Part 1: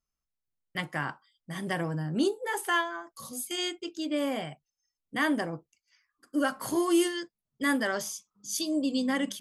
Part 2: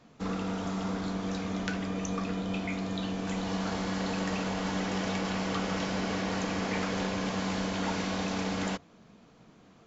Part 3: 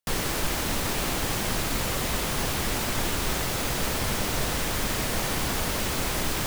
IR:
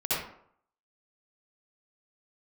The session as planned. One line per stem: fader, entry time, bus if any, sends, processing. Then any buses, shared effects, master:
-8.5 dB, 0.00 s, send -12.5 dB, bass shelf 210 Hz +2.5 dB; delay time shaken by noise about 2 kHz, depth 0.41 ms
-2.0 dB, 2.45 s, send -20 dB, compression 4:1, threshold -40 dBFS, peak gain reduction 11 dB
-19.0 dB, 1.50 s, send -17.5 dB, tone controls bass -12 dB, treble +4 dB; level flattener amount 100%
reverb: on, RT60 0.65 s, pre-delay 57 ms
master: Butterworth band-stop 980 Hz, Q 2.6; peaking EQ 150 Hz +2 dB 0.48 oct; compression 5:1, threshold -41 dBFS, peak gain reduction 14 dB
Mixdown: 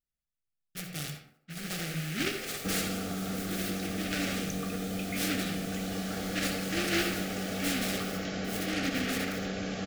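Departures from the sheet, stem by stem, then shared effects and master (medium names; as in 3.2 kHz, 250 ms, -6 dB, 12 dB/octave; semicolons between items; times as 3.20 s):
stem 2 -2.0 dB -> +6.0 dB; master: missing compression 5:1, threshold -41 dBFS, peak gain reduction 14 dB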